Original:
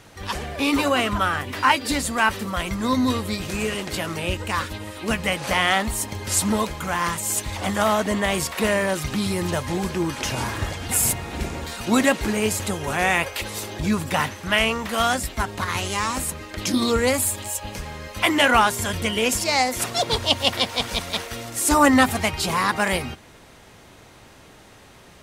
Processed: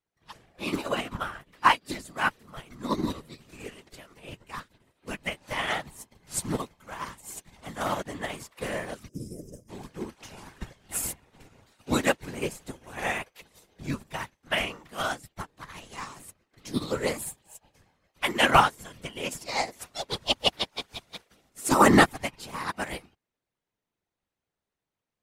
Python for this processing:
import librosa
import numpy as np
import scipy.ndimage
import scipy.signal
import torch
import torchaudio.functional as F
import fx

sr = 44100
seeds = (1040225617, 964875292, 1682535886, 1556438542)

y = fx.spec_box(x, sr, start_s=9.08, length_s=0.61, low_hz=560.0, high_hz=4900.0, gain_db=-25)
y = fx.whisperise(y, sr, seeds[0])
y = fx.upward_expand(y, sr, threshold_db=-40.0, expansion=2.5)